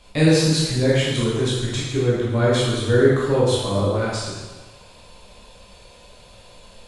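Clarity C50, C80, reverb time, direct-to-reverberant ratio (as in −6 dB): −2.0 dB, 1.0 dB, 1.3 s, −8.0 dB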